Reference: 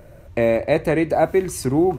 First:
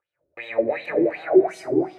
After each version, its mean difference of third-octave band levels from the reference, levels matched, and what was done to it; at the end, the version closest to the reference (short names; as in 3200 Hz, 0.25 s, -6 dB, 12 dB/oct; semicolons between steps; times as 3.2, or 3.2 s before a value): 10.5 dB: shoebox room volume 3200 m³, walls mixed, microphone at 4 m; wah 2.7 Hz 340–3600 Hz, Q 4.8; gate with hold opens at -39 dBFS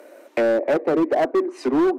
7.0 dB: steep high-pass 250 Hz 72 dB/oct; treble ducked by the level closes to 640 Hz, closed at -16 dBFS; hard clip -18.5 dBFS, distortion -11 dB; gain +3.5 dB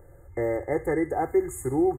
5.0 dB: comb 2.4 ms, depth 88%; thin delay 67 ms, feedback 50%, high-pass 1800 Hz, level -12.5 dB; FFT band-reject 2100–6500 Hz; gain -9 dB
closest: third